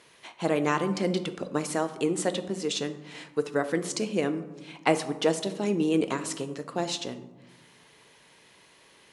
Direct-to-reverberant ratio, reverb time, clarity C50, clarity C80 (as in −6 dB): 9.0 dB, 1.1 s, 12.5 dB, 14.5 dB